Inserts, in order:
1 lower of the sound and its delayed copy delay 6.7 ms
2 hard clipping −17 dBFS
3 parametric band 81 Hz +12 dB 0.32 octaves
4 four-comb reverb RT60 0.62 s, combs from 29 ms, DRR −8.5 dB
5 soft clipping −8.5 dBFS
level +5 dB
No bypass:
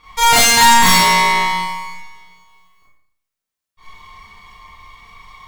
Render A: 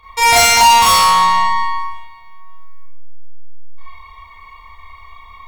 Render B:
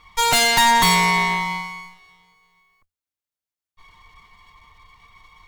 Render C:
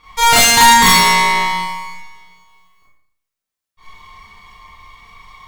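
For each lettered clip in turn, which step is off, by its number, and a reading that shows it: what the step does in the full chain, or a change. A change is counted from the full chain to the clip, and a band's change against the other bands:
1, 250 Hz band −9.5 dB
4, 8 kHz band −4.0 dB
2, distortion level −11 dB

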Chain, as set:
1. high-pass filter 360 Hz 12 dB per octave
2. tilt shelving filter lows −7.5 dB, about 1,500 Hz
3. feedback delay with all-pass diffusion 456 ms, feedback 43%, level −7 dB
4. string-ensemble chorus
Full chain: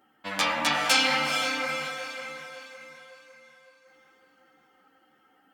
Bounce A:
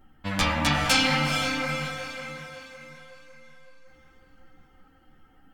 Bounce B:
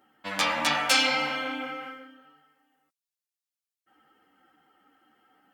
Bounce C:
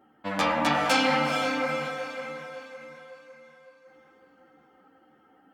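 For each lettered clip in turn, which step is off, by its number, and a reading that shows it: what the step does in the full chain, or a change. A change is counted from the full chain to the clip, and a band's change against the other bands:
1, 125 Hz band +16.0 dB
3, change in momentary loudness spread −6 LU
2, 8 kHz band −11.0 dB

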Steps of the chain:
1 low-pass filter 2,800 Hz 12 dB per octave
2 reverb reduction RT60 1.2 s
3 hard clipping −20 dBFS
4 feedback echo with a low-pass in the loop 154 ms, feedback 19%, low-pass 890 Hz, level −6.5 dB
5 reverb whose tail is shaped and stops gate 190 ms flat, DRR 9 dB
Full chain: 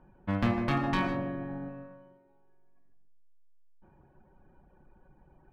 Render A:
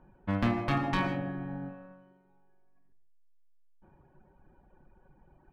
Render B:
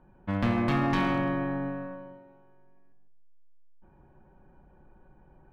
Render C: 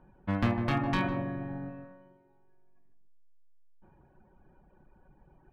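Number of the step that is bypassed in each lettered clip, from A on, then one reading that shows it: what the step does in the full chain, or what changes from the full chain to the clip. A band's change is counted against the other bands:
4, change in momentary loudness spread −2 LU
2, change in crest factor −2.5 dB
5, echo-to-direct ratio −7.0 dB to −11.5 dB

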